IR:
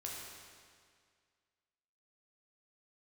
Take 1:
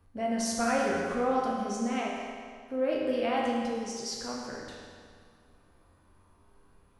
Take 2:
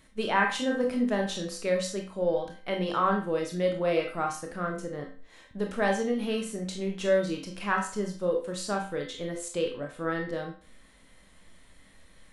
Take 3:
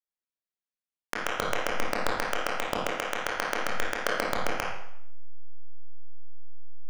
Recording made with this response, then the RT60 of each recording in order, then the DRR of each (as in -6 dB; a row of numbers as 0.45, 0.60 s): 1; 2.0, 0.40, 0.70 s; -3.5, 1.5, -4.5 dB